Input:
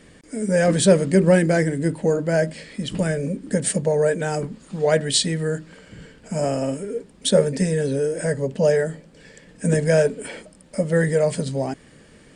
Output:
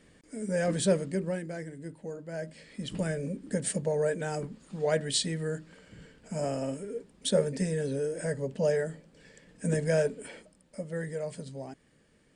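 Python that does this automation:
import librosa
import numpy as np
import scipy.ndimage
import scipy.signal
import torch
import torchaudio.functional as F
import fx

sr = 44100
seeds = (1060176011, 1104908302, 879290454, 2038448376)

y = fx.gain(x, sr, db=fx.line((0.92, -10.5), (1.42, -19.5), (2.26, -19.5), (2.84, -9.0), (10.09, -9.0), (10.87, -16.0)))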